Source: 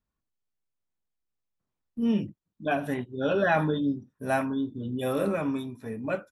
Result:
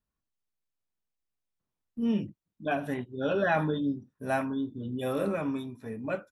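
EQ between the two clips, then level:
high-shelf EQ 9,500 Hz −4 dB
−2.5 dB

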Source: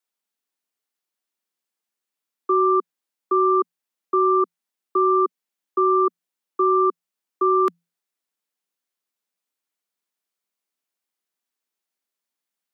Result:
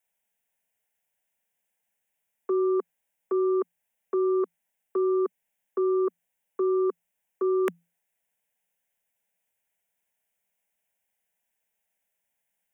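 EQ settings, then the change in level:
low-shelf EQ 350 Hz +5 dB
phaser with its sweep stopped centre 1,200 Hz, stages 6
+7.0 dB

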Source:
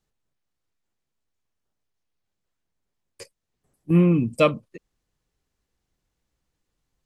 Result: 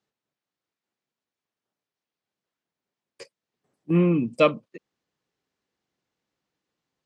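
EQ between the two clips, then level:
band-pass filter 190–5,500 Hz
0.0 dB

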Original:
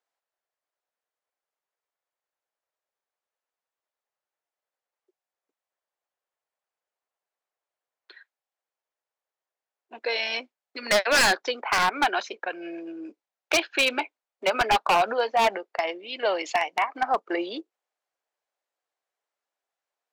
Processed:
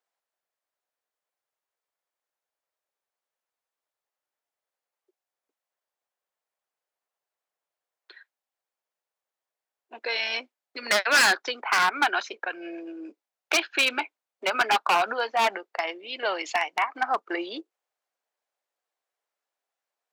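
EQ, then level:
high-pass filter 250 Hz 12 dB per octave
dynamic equaliser 1,400 Hz, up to +4 dB, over −39 dBFS, Q 2.7
dynamic equaliser 540 Hz, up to −6 dB, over −38 dBFS, Q 1.6
0.0 dB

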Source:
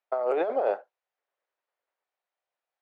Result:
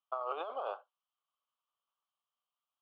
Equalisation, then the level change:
pair of resonant band-passes 1,900 Hz, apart 1.4 octaves
+5.0 dB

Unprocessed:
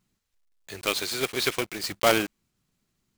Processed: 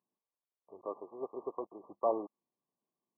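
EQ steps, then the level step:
high-pass filter 390 Hz 12 dB per octave
linear-phase brick-wall low-pass 1,200 Hz
−7.0 dB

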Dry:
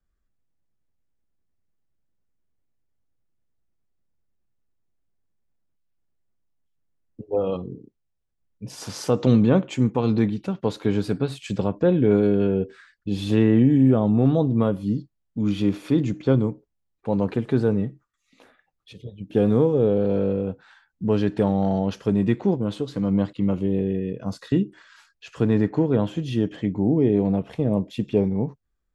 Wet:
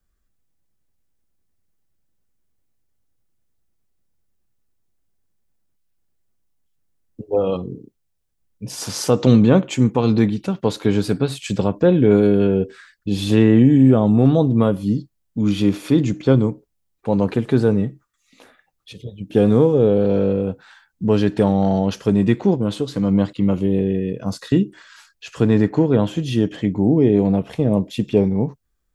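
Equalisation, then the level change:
high-shelf EQ 4,800 Hz +7.5 dB
+4.5 dB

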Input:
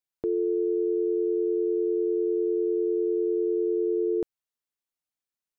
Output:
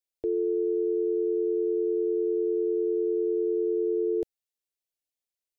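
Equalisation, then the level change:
phaser with its sweep stopped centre 480 Hz, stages 4
0.0 dB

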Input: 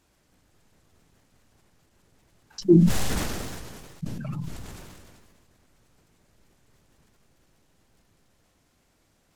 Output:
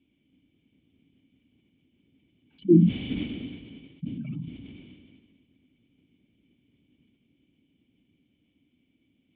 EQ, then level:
formant resonators in series i
high-pass filter 73 Hz
high-shelf EQ 2,800 Hz +10 dB
+7.5 dB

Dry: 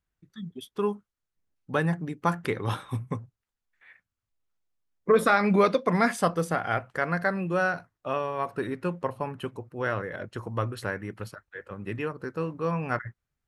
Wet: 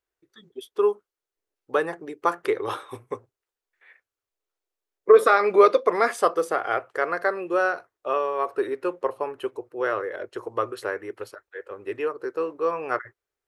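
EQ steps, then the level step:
dynamic equaliser 1,200 Hz, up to +7 dB, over −46 dBFS, Q 6
low shelf with overshoot 270 Hz −13 dB, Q 3
0.0 dB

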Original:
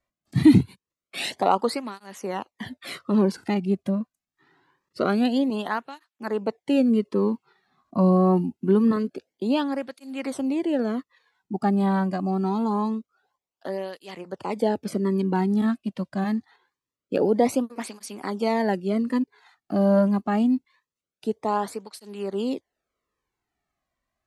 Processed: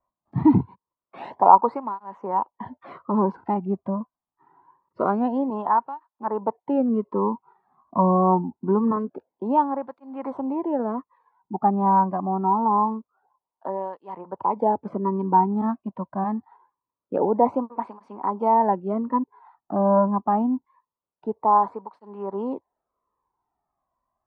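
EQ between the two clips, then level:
low-pass with resonance 960 Hz, resonance Q 7.5
−3.0 dB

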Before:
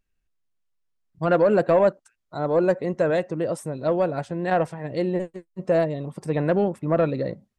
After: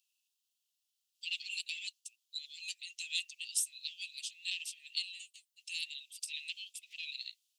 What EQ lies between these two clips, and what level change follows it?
Butterworth high-pass 2,700 Hz 72 dB per octave
+9.5 dB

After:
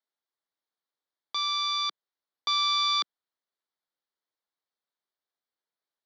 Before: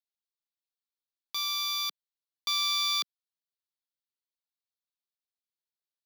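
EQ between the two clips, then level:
band-pass filter 310–6,200 Hz
high-frequency loss of the air 170 metres
parametric band 2,600 Hz −15 dB 0.27 octaves
+9.0 dB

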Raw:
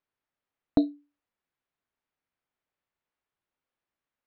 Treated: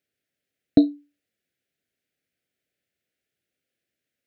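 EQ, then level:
high-pass filter 80 Hz
Butterworth band-reject 1,000 Hz, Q 0.99
+7.5 dB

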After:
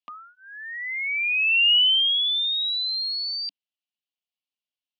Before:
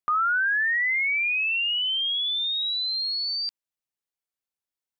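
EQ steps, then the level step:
loudspeaker in its box 170–4,700 Hz, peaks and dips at 200 Hz +6 dB, 280 Hz +8 dB, 680 Hz +5 dB, 1,100 Hz +7 dB, 1,600 Hz +3 dB, 2,900 Hz +8 dB
high shelf with overshoot 1,800 Hz +9 dB, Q 1.5
phaser with its sweep stopped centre 400 Hz, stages 6
−8.0 dB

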